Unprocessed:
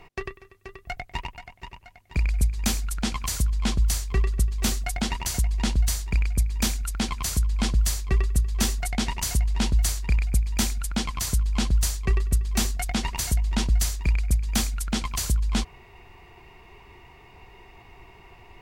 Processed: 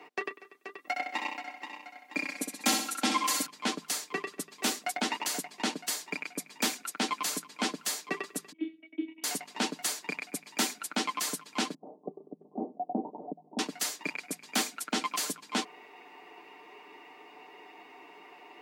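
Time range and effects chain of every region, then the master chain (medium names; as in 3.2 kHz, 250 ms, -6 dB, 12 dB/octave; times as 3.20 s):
0.78–3.46 s: high-pass 180 Hz + comb 3.7 ms, depth 79% + feedback delay 64 ms, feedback 43%, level -5.5 dB
8.52–9.24 s: cascade formant filter i + robot voice 322 Hz
11.74–13.59 s: steep low-pass 770 Hz 48 dB/octave + bass shelf 67 Hz +5 dB + compressor with a negative ratio -22 dBFS
whole clip: steep high-pass 220 Hz 48 dB/octave; treble shelf 3.9 kHz -6 dB; comb 6.7 ms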